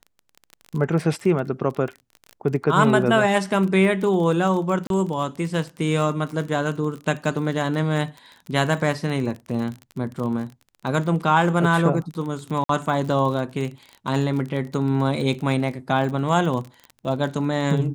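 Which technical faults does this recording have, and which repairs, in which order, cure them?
crackle 29/s -29 dBFS
4.87–4.9 gap 32 ms
12.64–12.69 gap 53 ms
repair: de-click; interpolate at 4.87, 32 ms; interpolate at 12.64, 53 ms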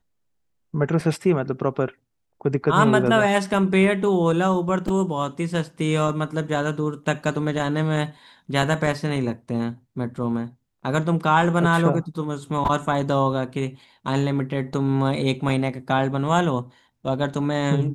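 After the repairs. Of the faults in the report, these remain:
none

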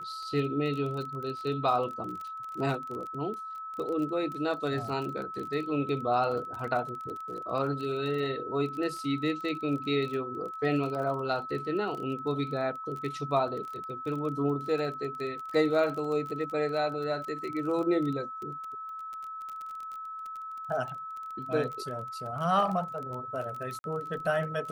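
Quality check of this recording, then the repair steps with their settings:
crackle 25/s -35 dBFS
tone 1300 Hz -37 dBFS
23.79–23.84 gap 51 ms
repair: de-click; notch 1300 Hz, Q 30; interpolate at 23.79, 51 ms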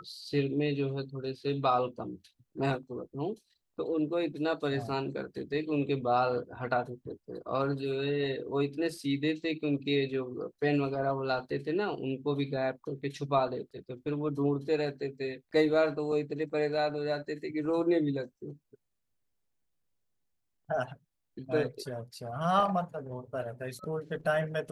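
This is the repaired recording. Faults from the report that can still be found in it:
none

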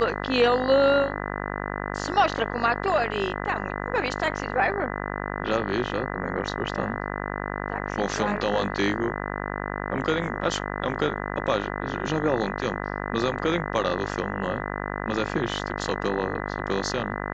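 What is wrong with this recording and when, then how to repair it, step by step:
buzz 50 Hz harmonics 40 -31 dBFS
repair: de-hum 50 Hz, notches 40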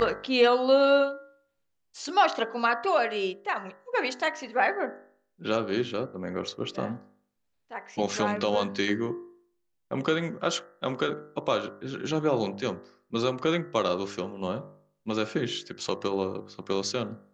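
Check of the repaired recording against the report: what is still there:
none

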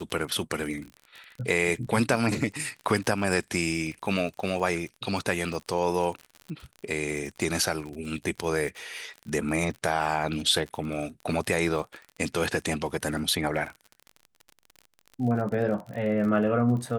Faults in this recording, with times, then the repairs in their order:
crackle 45/s -34 dBFS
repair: de-click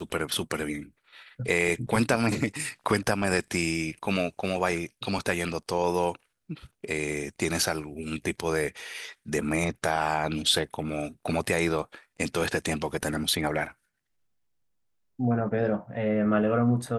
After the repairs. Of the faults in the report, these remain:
none

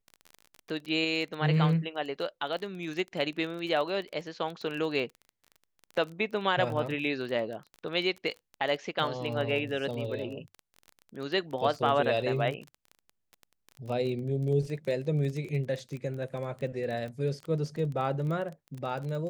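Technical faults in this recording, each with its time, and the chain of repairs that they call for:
crackle 22/s -35 dBFS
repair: de-click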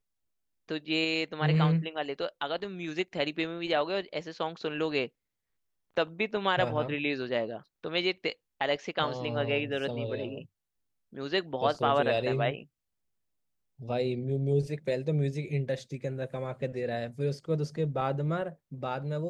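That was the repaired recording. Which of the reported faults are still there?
none

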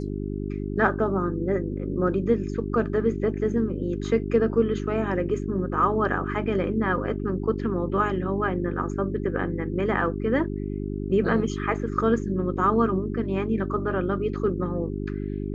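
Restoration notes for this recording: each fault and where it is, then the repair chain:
hum 50 Hz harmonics 8 -30 dBFS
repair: de-hum 50 Hz, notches 8

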